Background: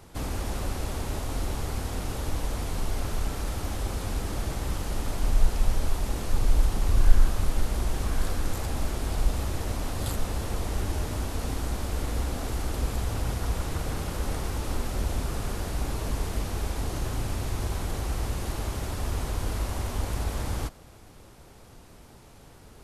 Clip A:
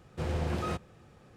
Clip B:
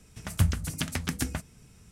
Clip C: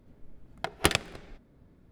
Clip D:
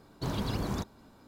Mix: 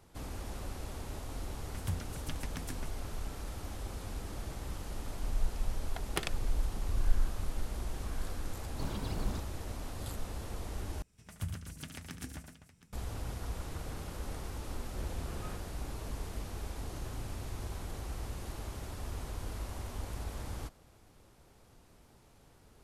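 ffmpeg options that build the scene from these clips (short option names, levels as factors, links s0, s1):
-filter_complex "[2:a]asplit=2[s0][s1];[0:a]volume=0.299[s2];[s1]aecho=1:1:73|113|249|719:0.335|0.501|0.266|0.15[s3];[1:a]asoftclip=type=tanh:threshold=0.0266[s4];[s2]asplit=2[s5][s6];[s5]atrim=end=11.024[s7];[s3]atrim=end=1.91,asetpts=PTS-STARTPTS,volume=0.178[s8];[s6]atrim=start=12.926[s9];[s0]atrim=end=1.91,asetpts=PTS-STARTPTS,volume=0.224,afade=t=in:d=0.004:c=hsin,afade=t=out:st=1.906:d=0.004:c=hsin,adelay=1480[s10];[3:a]atrim=end=1.91,asetpts=PTS-STARTPTS,volume=0.266,afade=t=in:d=0.004:c=hsin,afade=t=out:st=1.906:d=0.004:c=hsin,adelay=5320[s11];[4:a]atrim=end=1.27,asetpts=PTS-STARTPTS,volume=0.398,afade=t=in:d=0.004:c=hsin,afade=t=out:st=1.266:d=0.004:c=hsin,adelay=8570[s12];[s4]atrim=end=1.36,asetpts=PTS-STARTPTS,volume=0.299,afade=t=in:d=0.004:c=hsin,afade=t=out:st=1.356:d=0.004:c=hsin,adelay=14800[s13];[s7][s8]acrossfade=d=0.004:c1=hsin:c2=hsin[s14];[s14][s9]acrossfade=d=0.004:c1=hsin:c2=hsin[s15];[s15][s10][s11][s12][s13]amix=inputs=5:normalize=0"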